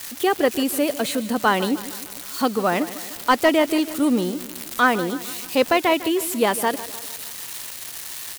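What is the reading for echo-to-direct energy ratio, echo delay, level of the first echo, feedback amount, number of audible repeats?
−14.0 dB, 152 ms, −15.5 dB, 54%, 4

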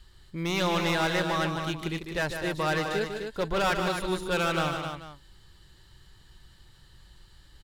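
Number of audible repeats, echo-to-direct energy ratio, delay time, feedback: 4, −4.0 dB, 150 ms, repeats not evenly spaced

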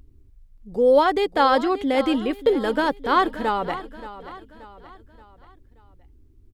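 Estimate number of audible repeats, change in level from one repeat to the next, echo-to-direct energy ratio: 3, −7.0 dB, −14.0 dB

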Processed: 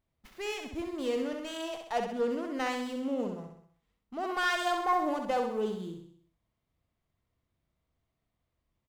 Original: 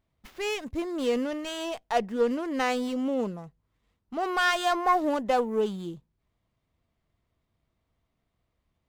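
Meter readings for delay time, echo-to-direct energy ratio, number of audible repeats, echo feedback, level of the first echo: 65 ms, −4.0 dB, 6, 51%, −5.5 dB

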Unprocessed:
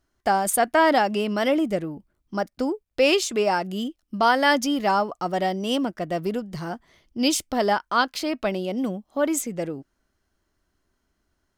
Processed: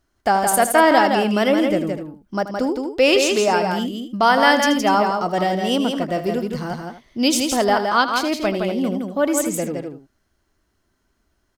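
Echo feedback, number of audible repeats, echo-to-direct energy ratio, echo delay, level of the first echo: repeats not evenly spaced, 3, −4.0 dB, 81 ms, −13.0 dB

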